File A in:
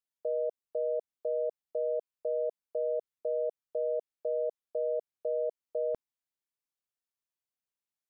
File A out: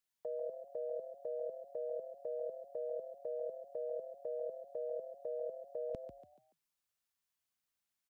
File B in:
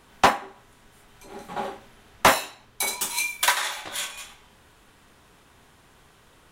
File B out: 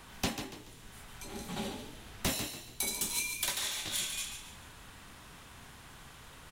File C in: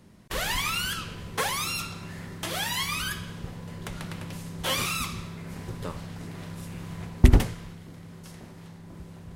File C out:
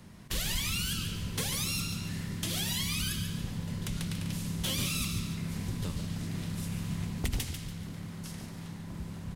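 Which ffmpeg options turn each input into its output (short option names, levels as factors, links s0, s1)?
-filter_complex "[0:a]equalizer=f=400:t=o:w=1.4:g=-6,acrossover=split=410|2600[s0][s1][s2];[s0]acompressor=threshold=0.02:ratio=4[s3];[s1]acompressor=threshold=0.00126:ratio=4[s4];[s2]acompressor=threshold=0.0141:ratio=4[s5];[s3][s4][s5]amix=inputs=3:normalize=0,aeval=exprs='0.178*sin(PI/2*2.82*val(0)/0.178)':c=same,asplit=2[s6][s7];[s7]asplit=4[s8][s9][s10][s11];[s8]adelay=143,afreqshift=38,volume=0.398[s12];[s9]adelay=286,afreqshift=76,volume=0.143[s13];[s10]adelay=429,afreqshift=114,volume=0.0519[s14];[s11]adelay=572,afreqshift=152,volume=0.0186[s15];[s12][s13][s14][s15]amix=inputs=4:normalize=0[s16];[s6][s16]amix=inputs=2:normalize=0,volume=0.376"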